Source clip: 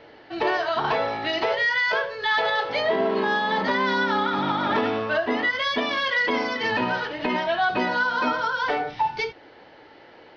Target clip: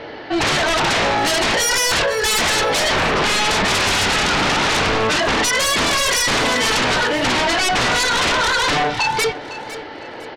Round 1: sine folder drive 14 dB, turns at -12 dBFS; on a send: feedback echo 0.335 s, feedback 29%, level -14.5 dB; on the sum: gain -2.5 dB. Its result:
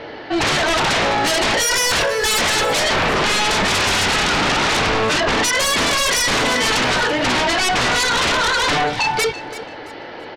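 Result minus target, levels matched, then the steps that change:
echo 0.17 s early
change: feedback echo 0.505 s, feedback 29%, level -14.5 dB

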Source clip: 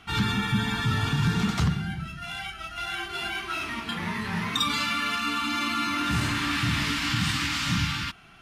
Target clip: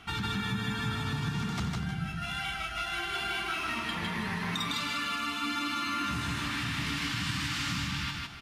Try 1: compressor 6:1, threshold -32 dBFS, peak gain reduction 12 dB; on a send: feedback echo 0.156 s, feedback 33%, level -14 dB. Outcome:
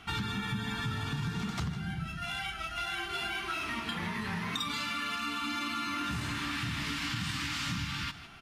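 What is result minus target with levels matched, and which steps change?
echo-to-direct -12 dB
change: feedback echo 0.156 s, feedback 33%, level -2 dB

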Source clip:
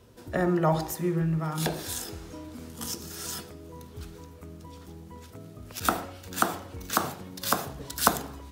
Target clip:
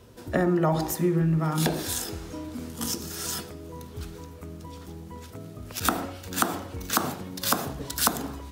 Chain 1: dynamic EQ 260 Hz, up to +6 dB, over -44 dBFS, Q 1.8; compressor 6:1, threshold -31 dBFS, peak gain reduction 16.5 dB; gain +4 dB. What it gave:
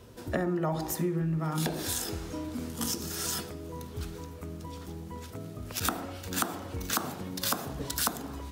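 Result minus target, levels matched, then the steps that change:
compressor: peak gain reduction +6.5 dB
change: compressor 6:1, threshold -23 dBFS, peak gain reduction 9.5 dB

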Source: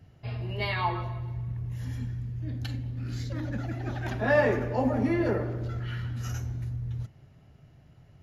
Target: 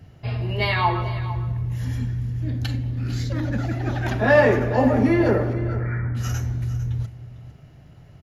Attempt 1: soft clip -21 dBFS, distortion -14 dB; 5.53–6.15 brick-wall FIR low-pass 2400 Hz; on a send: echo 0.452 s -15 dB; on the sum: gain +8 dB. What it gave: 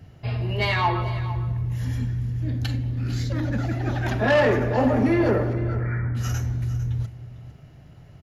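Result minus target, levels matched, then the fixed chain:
soft clip: distortion +16 dB
soft clip -10 dBFS, distortion -30 dB; 5.53–6.15 brick-wall FIR low-pass 2400 Hz; on a send: echo 0.452 s -15 dB; on the sum: gain +8 dB

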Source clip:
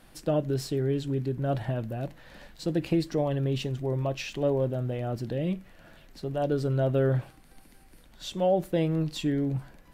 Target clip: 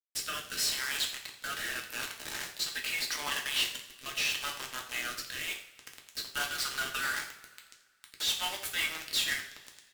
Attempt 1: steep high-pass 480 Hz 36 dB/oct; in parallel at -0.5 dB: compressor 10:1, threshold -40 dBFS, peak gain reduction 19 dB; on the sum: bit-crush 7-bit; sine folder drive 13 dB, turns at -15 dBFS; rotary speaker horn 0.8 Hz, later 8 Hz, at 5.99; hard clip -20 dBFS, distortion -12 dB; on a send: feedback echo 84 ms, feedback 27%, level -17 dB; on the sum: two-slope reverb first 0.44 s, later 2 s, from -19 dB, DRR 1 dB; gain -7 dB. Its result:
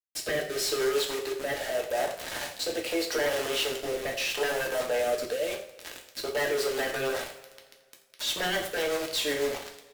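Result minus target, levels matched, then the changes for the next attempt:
500 Hz band +19.0 dB
change: steep high-pass 1200 Hz 36 dB/oct

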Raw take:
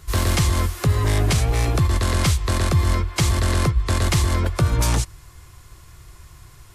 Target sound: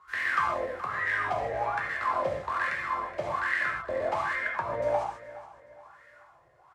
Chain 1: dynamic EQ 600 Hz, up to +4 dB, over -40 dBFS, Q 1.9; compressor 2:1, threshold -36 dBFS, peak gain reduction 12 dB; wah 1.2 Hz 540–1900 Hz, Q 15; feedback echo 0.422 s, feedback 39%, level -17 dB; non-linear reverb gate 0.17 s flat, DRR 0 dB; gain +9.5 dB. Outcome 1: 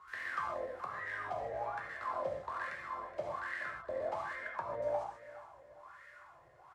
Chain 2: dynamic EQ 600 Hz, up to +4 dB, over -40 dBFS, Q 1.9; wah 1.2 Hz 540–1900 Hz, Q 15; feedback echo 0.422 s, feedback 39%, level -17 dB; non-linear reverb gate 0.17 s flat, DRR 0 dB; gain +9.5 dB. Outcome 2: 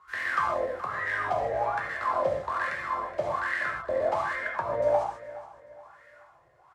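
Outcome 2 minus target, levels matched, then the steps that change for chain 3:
500 Hz band +3.0 dB
change: dynamic EQ 2400 Hz, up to +4 dB, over -40 dBFS, Q 1.9

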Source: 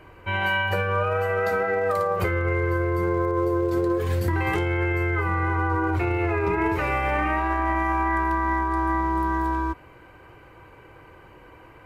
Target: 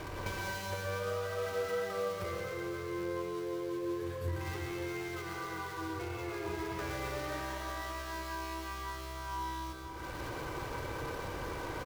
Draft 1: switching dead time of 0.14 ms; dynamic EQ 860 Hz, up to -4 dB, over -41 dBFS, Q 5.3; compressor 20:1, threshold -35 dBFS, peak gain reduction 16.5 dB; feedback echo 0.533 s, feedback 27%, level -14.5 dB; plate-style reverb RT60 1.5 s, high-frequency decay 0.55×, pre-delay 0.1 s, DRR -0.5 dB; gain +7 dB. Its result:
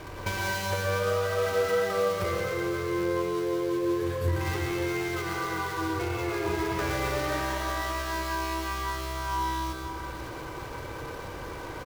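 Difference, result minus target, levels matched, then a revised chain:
compressor: peak gain reduction -9 dB
switching dead time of 0.14 ms; dynamic EQ 860 Hz, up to -4 dB, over -41 dBFS, Q 5.3; compressor 20:1, threshold -44.5 dBFS, peak gain reduction 25.5 dB; feedback echo 0.533 s, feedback 27%, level -14.5 dB; plate-style reverb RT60 1.5 s, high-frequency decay 0.55×, pre-delay 0.1 s, DRR -0.5 dB; gain +7 dB

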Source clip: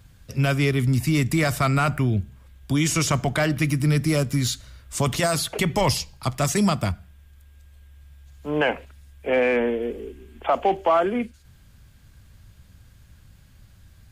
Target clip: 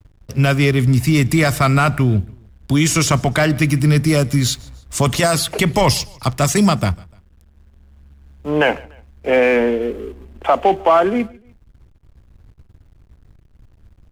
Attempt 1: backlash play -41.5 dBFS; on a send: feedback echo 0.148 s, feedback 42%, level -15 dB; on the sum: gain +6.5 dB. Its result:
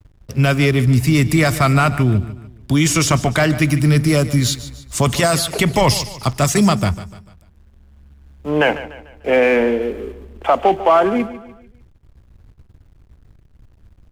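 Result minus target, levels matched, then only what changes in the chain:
echo-to-direct +10 dB
change: feedback echo 0.148 s, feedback 42%, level -25 dB

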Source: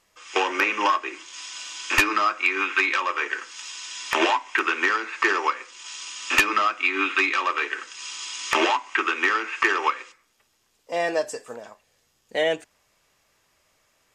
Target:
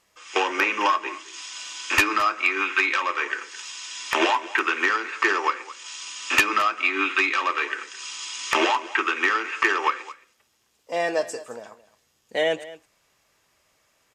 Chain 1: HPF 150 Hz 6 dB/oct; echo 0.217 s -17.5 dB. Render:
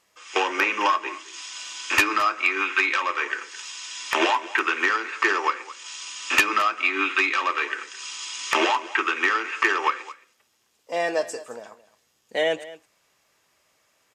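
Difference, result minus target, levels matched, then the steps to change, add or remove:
125 Hz band -3.5 dB
change: HPF 40 Hz 6 dB/oct

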